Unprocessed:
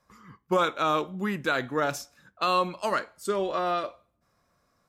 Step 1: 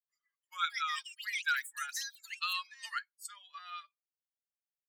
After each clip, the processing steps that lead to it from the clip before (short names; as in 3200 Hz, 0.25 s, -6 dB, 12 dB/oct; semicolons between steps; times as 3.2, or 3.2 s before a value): per-bin expansion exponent 2; elliptic high-pass 1400 Hz, stop band 70 dB; echoes that change speed 0.349 s, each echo +7 st, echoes 3, each echo -6 dB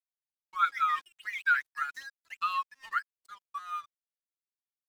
expander -56 dBFS; EQ curve 660 Hz 0 dB, 1100 Hz +10 dB, 6200 Hz -17 dB; crossover distortion -54 dBFS; gain +1.5 dB